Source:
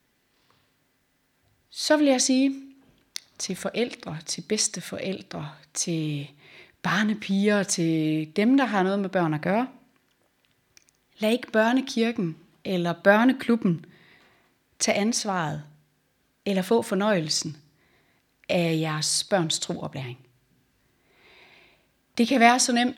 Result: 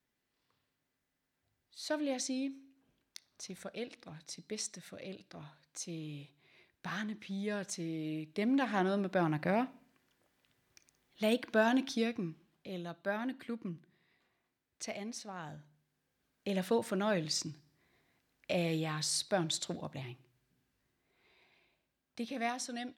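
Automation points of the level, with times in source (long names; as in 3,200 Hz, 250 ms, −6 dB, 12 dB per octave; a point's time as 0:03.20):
0:07.92 −15.5 dB
0:08.96 −7.5 dB
0:11.84 −7.5 dB
0:13.01 −18.5 dB
0:15.32 −18.5 dB
0:16.54 −9.5 dB
0:19.94 −9.5 dB
0:22.39 −19 dB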